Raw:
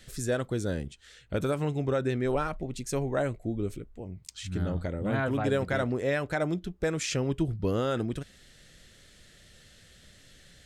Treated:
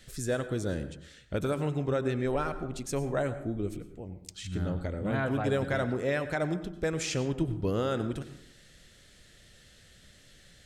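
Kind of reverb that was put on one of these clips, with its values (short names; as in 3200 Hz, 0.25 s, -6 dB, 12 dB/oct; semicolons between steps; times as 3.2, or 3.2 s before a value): plate-style reverb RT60 0.72 s, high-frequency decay 0.45×, pre-delay 85 ms, DRR 11.5 dB; gain -1.5 dB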